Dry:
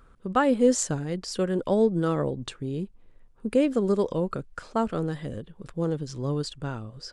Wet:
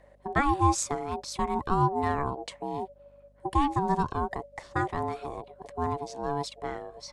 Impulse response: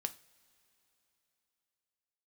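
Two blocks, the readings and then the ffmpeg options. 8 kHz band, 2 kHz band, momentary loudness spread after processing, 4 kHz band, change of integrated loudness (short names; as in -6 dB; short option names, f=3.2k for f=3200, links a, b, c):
-3.0 dB, +2.0 dB, 13 LU, -3.0 dB, -3.0 dB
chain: -af "afreqshift=-16,aeval=exprs='val(0)*sin(2*PI*570*n/s)':c=same,aeval=exprs='val(0)+0.000891*(sin(2*PI*50*n/s)+sin(2*PI*2*50*n/s)/2+sin(2*PI*3*50*n/s)/3+sin(2*PI*4*50*n/s)/4+sin(2*PI*5*50*n/s)/5)':c=same"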